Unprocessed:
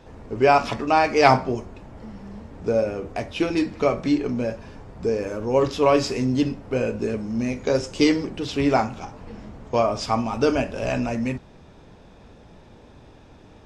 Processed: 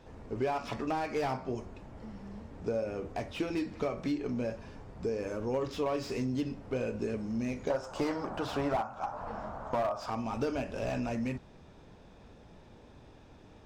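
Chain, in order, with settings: 7.7–10.1 band shelf 940 Hz +16 dB; compressor 4:1, threshold -23 dBFS, peak gain reduction 18.5 dB; slew limiter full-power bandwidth 73 Hz; gain -6.5 dB

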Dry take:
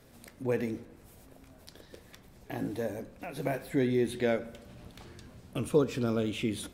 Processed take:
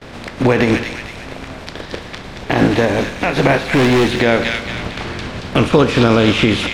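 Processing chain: spectral contrast lowered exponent 0.63; LPF 3200 Hz 12 dB/oct; gate with hold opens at -52 dBFS; in parallel at -2 dB: compressor, threshold -39 dBFS, peak gain reduction 18.5 dB; 3.73–4.17 on the sum: hard clip -30 dBFS, distortion -11 dB; on a send: thin delay 0.227 s, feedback 45%, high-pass 2200 Hz, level -4.5 dB; on the sum: maximiser +21 dB; gain -1 dB

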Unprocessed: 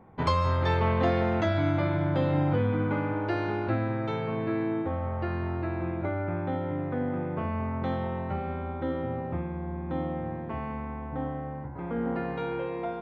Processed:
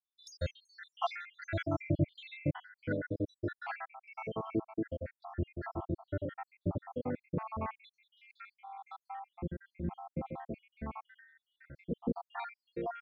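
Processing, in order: random spectral dropouts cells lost 81%; 6.25–6.77 reverse; 9.84–10.34 dynamic EQ 180 Hz, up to +5 dB, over -52 dBFS, Q 1.3; harmonic tremolo 1.5 Hz, depth 70%, crossover 540 Hz; gain +2 dB

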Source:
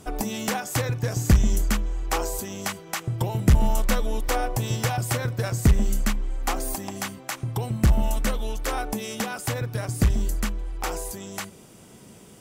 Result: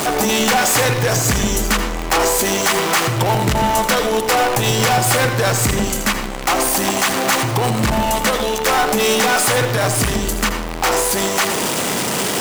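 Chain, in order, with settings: zero-crossing step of -28.5 dBFS; HPF 580 Hz 6 dB/oct; high shelf 6800 Hz -6.5 dB; sample leveller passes 5; reverb RT60 0.55 s, pre-delay 79 ms, DRR 7 dB

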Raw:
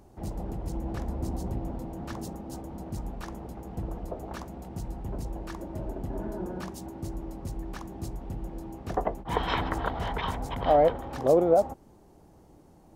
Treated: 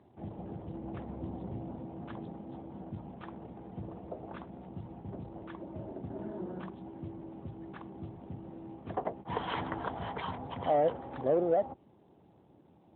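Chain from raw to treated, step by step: HPF 54 Hz 12 dB/oct; in parallel at -4 dB: soft clip -22.5 dBFS, distortion -9 dB; on the sum: gain -8.5 dB; AMR-NB 12.2 kbps 8000 Hz

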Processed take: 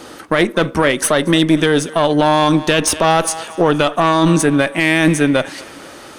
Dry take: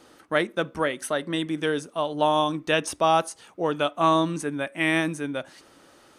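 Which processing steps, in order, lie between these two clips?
one diode to ground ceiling -24 dBFS; thinning echo 0.232 s, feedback 53%, level -23 dB; maximiser +19 dB; gain -1 dB

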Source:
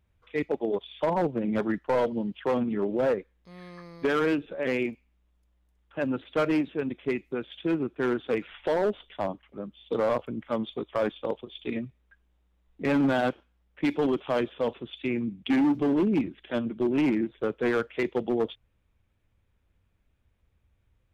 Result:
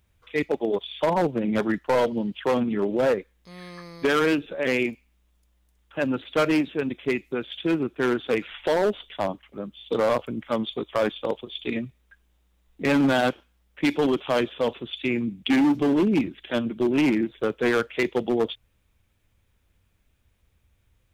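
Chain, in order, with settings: high shelf 3000 Hz +10 dB; gain +3 dB

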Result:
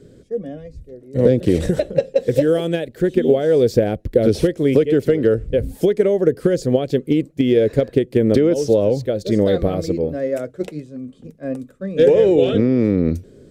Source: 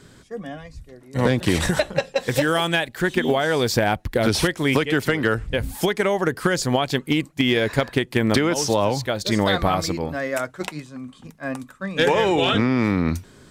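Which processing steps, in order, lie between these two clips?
resonant low shelf 680 Hz +11 dB, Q 3; gain -9 dB

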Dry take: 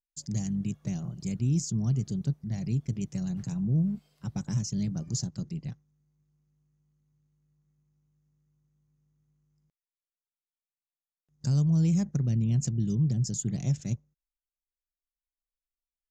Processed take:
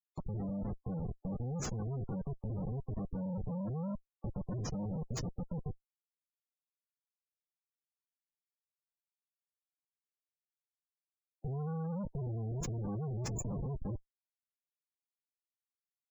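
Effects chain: rotary speaker horn 6 Hz; Schmitt trigger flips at -37 dBFS; spectral gate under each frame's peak -20 dB strong; gain -3.5 dB

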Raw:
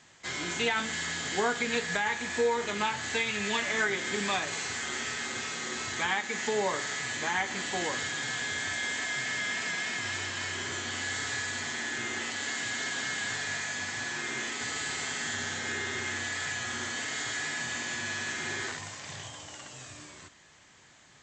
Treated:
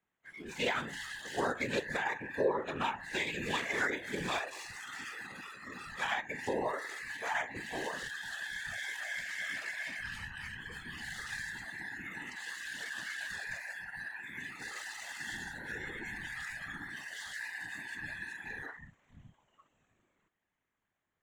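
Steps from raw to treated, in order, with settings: Wiener smoothing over 9 samples; spectral noise reduction 22 dB; whisperiser; gain -3.5 dB

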